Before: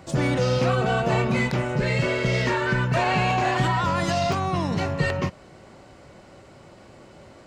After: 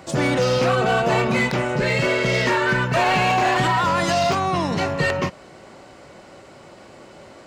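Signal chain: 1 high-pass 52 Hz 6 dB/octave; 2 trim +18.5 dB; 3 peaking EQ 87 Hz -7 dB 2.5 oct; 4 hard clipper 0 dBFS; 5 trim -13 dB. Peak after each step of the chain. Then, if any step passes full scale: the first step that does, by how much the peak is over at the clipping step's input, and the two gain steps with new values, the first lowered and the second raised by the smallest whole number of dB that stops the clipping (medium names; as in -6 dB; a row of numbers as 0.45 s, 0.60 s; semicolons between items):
-11.0 dBFS, +7.5 dBFS, +6.5 dBFS, 0.0 dBFS, -13.0 dBFS; step 2, 6.5 dB; step 2 +11.5 dB, step 5 -6 dB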